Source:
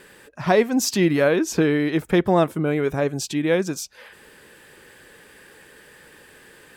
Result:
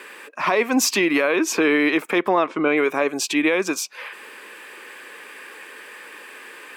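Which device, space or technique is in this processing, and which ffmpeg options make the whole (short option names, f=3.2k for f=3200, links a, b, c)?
laptop speaker: -filter_complex "[0:a]asplit=3[a][b][c];[a]afade=t=out:st=2.28:d=0.02[d];[b]lowpass=f=5.8k:w=0.5412,lowpass=f=5.8k:w=1.3066,afade=t=in:st=2.28:d=0.02,afade=t=out:st=2.76:d=0.02[e];[c]afade=t=in:st=2.76:d=0.02[f];[d][e][f]amix=inputs=3:normalize=0,highpass=f=260:w=0.5412,highpass=f=260:w=1.3066,equalizer=f=1.1k:t=o:w=0.54:g=10,equalizer=f=2.4k:t=o:w=0.56:g=10.5,alimiter=limit=-13dB:level=0:latency=1:release=108,volume=4dB"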